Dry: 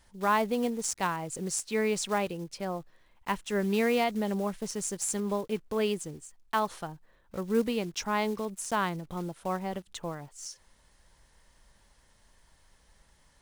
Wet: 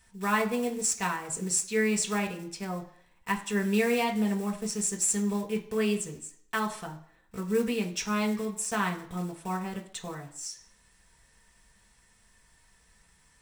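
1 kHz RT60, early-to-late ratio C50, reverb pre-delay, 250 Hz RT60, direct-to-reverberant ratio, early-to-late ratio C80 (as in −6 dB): 0.65 s, 12.0 dB, 3 ms, 0.55 s, 0.5 dB, 15.5 dB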